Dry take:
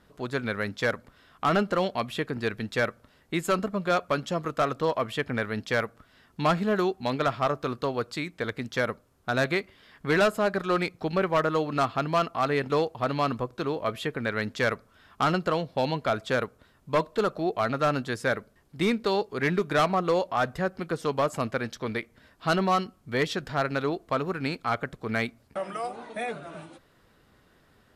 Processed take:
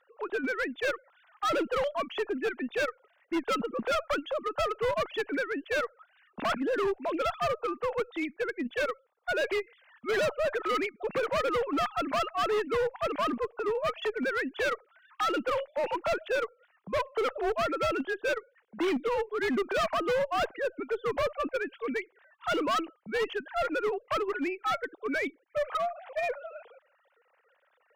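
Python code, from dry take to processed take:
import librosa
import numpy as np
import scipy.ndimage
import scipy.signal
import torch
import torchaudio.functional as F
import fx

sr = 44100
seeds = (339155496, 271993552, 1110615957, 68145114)

y = fx.sine_speech(x, sr)
y = fx.cheby_harmonics(y, sr, harmonics=(3, 5, 7, 8), levels_db=(-37, -20, -26, -29), full_scale_db=-10.0)
y = np.clip(y, -10.0 ** (-25.0 / 20.0), 10.0 ** (-25.0 / 20.0))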